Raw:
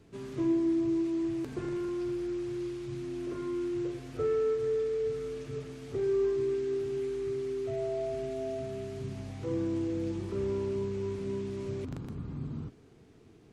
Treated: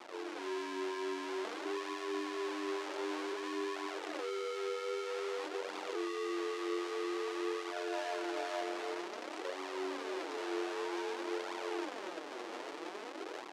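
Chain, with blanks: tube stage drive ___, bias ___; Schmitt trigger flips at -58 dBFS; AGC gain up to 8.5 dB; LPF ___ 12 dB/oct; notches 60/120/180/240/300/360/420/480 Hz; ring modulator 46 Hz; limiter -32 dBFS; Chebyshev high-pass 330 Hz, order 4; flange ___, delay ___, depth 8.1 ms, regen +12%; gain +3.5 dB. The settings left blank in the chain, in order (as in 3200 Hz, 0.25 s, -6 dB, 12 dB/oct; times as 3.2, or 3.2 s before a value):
36 dB, 0.25, 5900 Hz, 0.52 Hz, 0.8 ms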